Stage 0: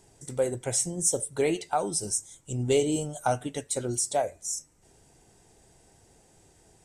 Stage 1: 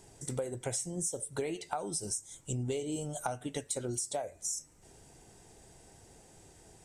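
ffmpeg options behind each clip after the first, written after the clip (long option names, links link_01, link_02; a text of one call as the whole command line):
ffmpeg -i in.wav -af "acompressor=threshold=-34dB:ratio=12,volume=2dB" out.wav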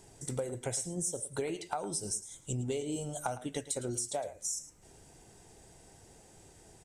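ffmpeg -i in.wav -af "aecho=1:1:109:0.178" out.wav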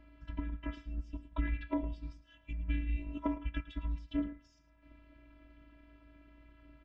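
ffmpeg -i in.wav -af "tremolo=f=250:d=0.667,afftfilt=real='hypot(re,im)*cos(PI*b)':imag='0':win_size=512:overlap=0.75,highpass=frequency=180:width_type=q:width=0.5412,highpass=frequency=180:width_type=q:width=1.307,lowpass=frequency=3200:width_type=q:width=0.5176,lowpass=frequency=3200:width_type=q:width=0.7071,lowpass=frequency=3200:width_type=q:width=1.932,afreqshift=-400,volume=8.5dB" out.wav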